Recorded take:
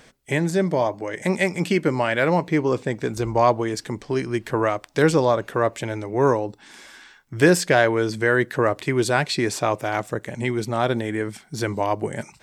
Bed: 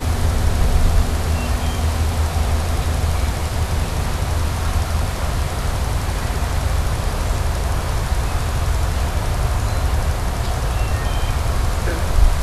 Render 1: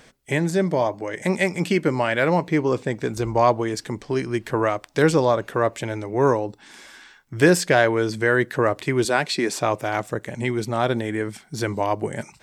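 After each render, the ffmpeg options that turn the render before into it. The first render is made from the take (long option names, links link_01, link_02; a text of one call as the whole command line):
ffmpeg -i in.wav -filter_complex "[0:a]asettb=1/sr,asplit=3[link_01][link_02][link_03];[link_01]atrim=end=9.054[link_04];[link_02]atrim=start=9.05:end=9.57,asetpts=PTS-STARTPTS,afade=type=in:duration=0.004:curve=qsin,afade=type=out:start_time=0.516:duration=0.004:curve=qsin,highpass=frequency=170:width=0.5412,highpass=frequency=170:width=1.3066[link_05];[link_03]atrim=start=9.566[link_06];[link_04][link_05]acrossfade=duration=0.004:curve1=hsin:curve2=qsin[link_07];[link_07][link_06]acrossfade=duration=0.004:curve1=qsin:curve2=hsin" out.wav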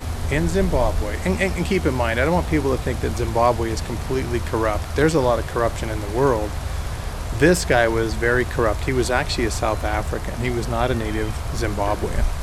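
ffmpeg -i in.wav -i bed.wav -filter_complex "[1:a]volume=-7.5dB[link_01];[0:a][link_01]amix=inputs=2:normalize=0" out.wav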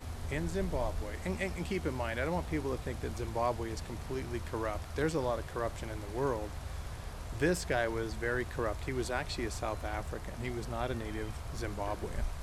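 ffmpeg -i in.wav -af "volume=-14.5dB" out.wav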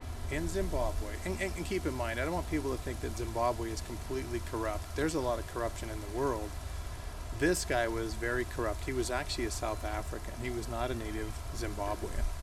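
ffmpeg -i in.wav -af "aecho=1:1:3:0.38,adynamicequalizer=threshold=0.00224:dfrequency=4500:dqfactor=0.7:tfrequency=4500:tqfactor=0.7:attack=5:release=100:ratio=0.375:range=2.5:mode=boostabove:tftype=highshelf" out.wav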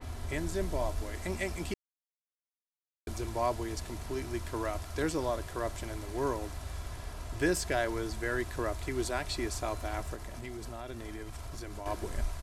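ffmpeg -i in.wav -filter_complex "[0:a]asettb=1/sr,asplit=3[link_01][link_02][link_03];[link_01]atrim=end=10.144[link_04];[link_02]atrim=start=10.14:end=11.86,asetpts=PTS-STARTPTS,afade=type=in:duration=0.004:curve=qsin,afade=type=out:start_time=1.716:duration=0.004:curve=qsin,acompressor=threshold=-37dB:ratio=6:attack=3.2:release=140:knee=1:detection=peak[link_05];[link_03]atrim=start=11.856[link_06];[link_04][link_05]acrossfade=duration=0.004:curve1=hsin:curve2=qsin[link_07];[link_07][link_06]acrossfade=duration=0.004:curve1=qsin:curve2=hsin,asplit=3[link_08][link_09][link_10];[link_08]atrim=end=1.74,asetpts=PTS-STARTPTS,afade=type=out:start_time=1.736:duration=0.004:curve=hsin[link_11];[link_09]atrim=start=1.74:end=3.07,asetpts=PTS-STARTPTS,volume=0[link_12];[link_10]atrim=start=3.07,asetpts=PTS-STARTPTS,afade=type=in:duration=0.004:curve=hsin[link_13];[link_11][link_12][link_13]concat=n=3:v=0:a=1" out.wav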